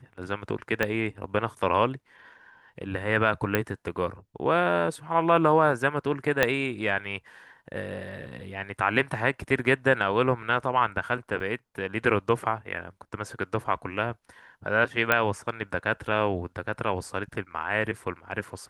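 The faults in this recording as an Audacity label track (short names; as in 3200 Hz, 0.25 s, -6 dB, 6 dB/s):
0.830000	0.830000	pop -11 dBFS
3.550000	3.550000	pop -9 dBFS
6.430000	6.430000	pop -6 dBFS
11.400000	11.400000	gap 2.8 ms
15.120000	15.120000	pop -7 dBFS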